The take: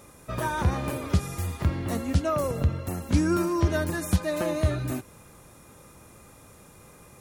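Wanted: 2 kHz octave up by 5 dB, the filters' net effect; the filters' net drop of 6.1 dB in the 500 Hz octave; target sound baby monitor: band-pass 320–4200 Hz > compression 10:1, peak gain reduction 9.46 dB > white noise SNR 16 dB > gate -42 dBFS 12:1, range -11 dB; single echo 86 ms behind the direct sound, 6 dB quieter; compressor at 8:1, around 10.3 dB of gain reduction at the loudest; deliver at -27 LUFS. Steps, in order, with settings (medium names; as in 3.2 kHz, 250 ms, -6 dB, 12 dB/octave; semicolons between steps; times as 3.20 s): peaking EQ 500 Hz -8 dB; peaking EQ 2 kHz +7.5 dB; compression 8:1, threshold -28 dBFS; band-pass 320–4200 Hz; delay 86 ms -6 dB; compression 10:1, threshold -37 dBFS; white noise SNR 16 dB; gate -42 dBFS 12:1, range -11 dB; trim +14 dB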